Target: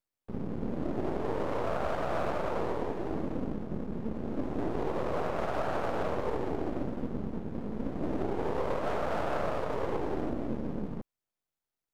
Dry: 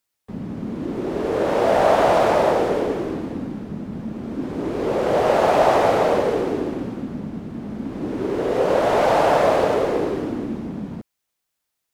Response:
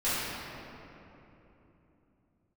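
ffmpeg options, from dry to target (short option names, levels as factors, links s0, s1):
-af "tiltshelf=f=1300:g=5.5,aeval=exprs='max(val(0),0)':c=same,alimiter=limit=0.224:level=0:latency=1:release=307,volume=0.473"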